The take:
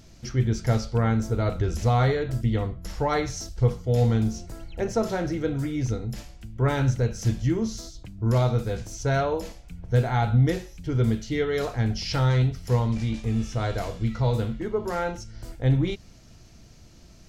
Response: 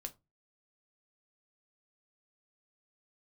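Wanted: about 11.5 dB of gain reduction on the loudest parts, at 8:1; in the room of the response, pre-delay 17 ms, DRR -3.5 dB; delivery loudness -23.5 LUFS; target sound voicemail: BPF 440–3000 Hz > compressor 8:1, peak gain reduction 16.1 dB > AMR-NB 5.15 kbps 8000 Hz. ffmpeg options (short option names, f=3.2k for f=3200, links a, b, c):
-filter_complex "[0:a]acompressor=threshold=-28dB:ratio=8,asplit=2[a][b];[1:a]atrim=start_sample=2205,adelay=17[c];[b][c]afir=irnorm=-1:irlink=0,volume=7dB[d];[a][d]amix=inputs=2:normalize=0,highpass=440,lowpass=3k,acompressor=threshold=-41dB:ratio=8,volume=24dB" -ar 8000 -c:a libopencore_amrnb -b:a 5150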